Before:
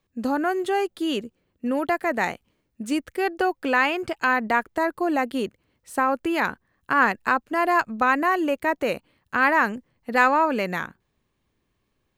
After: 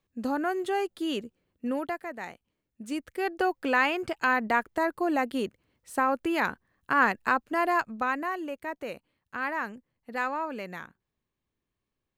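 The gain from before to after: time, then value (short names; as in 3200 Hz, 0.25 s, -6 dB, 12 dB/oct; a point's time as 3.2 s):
1.72 s -5 dB
2.16 s -15 dB
3.45 s -3.5 dB
7.56 s -3.5 dB
8.48 s -12 dB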